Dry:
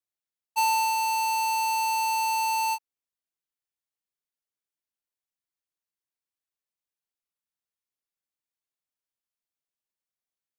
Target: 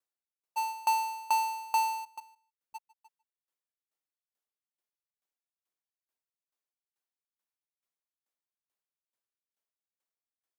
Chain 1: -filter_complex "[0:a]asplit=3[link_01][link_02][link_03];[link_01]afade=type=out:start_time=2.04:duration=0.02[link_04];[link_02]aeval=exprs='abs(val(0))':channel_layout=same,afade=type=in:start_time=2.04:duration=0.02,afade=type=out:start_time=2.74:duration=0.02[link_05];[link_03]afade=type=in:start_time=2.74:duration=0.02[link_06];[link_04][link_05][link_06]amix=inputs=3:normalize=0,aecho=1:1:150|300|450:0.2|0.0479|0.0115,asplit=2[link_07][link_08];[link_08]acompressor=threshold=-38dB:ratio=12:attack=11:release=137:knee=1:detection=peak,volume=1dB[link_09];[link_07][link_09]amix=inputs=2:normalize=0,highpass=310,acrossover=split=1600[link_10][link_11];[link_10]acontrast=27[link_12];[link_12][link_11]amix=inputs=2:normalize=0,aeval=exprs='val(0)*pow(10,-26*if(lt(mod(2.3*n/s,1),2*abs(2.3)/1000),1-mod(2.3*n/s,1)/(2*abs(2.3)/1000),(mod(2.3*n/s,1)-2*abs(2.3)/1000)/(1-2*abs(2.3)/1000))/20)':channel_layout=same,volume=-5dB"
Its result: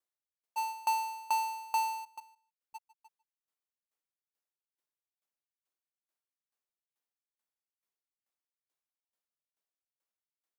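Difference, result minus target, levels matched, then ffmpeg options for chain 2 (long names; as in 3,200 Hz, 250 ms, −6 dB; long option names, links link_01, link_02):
downward compressor: peak gain reduction +8 dB
-filter_complex "[0:a]asplit=3[link_01][link_02][link_03];[link_01]afade=type=out:start_time=2.04:duration=0.02[link_04];[link_02]aeval=exprs='abs(val(0))':channel_layout=same,afade=type=in:start_time=2.04:duration=0.02,afade=type=out:start_time=2.74:duration=0.02[link_05];[link_03]afade=type=in:start_time=2.74:duration=0.02[link_06];[link_04][link_05][link_06]amix=inputs=3:normalize=0,aecho=1:1:150|300|450:0.2|0.0479|0.0115,asplit=2[link_07][link_08];[link_08]acompressor=threshold=-29dB:ratio=12:attack=11:release=137:knee=1:detection=peak,volume=1dB[link_09];[link_07][link_09]amix=inputs=2:normalize=0,highpass=310,acrossover=split=1600[link_10][link_11];[link_10]acontrast=27[link_12];[link_12][link_11]amix=inputs=2:normalize=0,aeval=exprs='val(0)*pow(10,-26*if(lt(mod(2.3*n/s,1),2*abs(2.3)/1000),1-mod(2.3*n/s,1)/(2*abs(2.3)/1000),(mod(2.3*n/s,1)-2*abs(2.3)/1000)/(1-2*abs(2.3)/1000))/20)':channel_layout=same,volume=-5dB"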